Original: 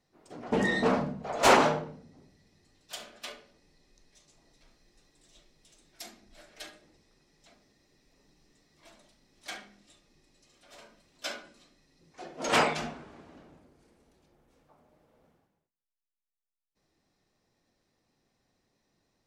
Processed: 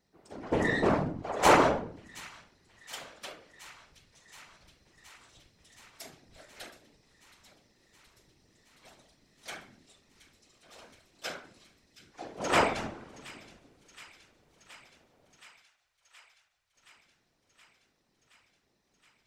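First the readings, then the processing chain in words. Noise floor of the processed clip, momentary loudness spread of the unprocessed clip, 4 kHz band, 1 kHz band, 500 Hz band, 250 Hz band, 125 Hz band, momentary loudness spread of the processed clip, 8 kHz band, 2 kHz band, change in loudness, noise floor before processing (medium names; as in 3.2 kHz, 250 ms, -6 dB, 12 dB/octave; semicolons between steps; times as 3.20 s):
-75 dBFS, 24 LU, -3.0 dB, 0.0 dB, 0.0 dB, -0.5 dB, +1.5 dB, 25 LU, -2.0 dB, -1.0 dB, -0.5 dB, under -85 dBFS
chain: dynamic bell 4.4 kHz, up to -4 dB, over -51 dBFS, Q 0.84; whisper effect; feedback echo behind a high-pass 722 ms, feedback 77%, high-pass 2.2 kHz, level -16 dB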